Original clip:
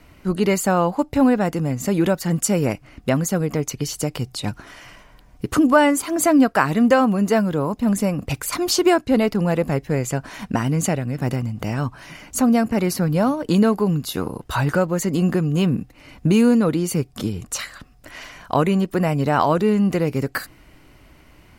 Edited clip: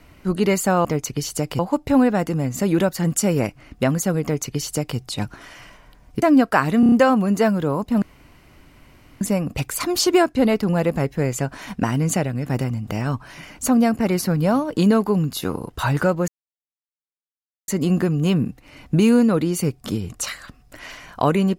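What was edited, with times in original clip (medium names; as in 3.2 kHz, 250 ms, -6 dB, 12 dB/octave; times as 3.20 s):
3.49–4.23 s: copy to 0.85 s
5.48–6.25 s: delete
6.83 s: stutter 0.03 s, 5 plays
7.93 s: insert room tone 1.19 s
15.00 s: insert silence 1.40 s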